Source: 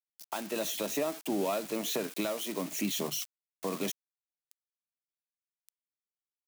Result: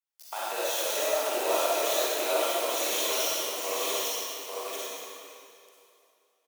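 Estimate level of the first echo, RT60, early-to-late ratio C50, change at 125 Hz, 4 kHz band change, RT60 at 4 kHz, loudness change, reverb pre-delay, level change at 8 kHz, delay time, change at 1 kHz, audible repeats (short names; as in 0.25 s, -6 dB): -3.0 dB, 2.7 s, -7.5 dB, under -20 dB, +8.5 dB, 2.3 s, +6.0 dB, 35 ms, +8.0 dB, 0.847 s, +9.5 dB, 1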